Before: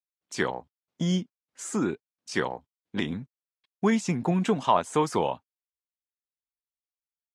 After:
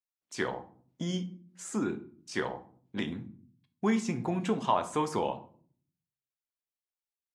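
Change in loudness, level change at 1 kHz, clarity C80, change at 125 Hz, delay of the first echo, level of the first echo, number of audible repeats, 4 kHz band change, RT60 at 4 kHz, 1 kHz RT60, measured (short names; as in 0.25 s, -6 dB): -5.0 dB, -4.5 dB, 19.0 dB, -6.5 dB, none, none, none, -5.0 dB, 0.30 s, 0.45 s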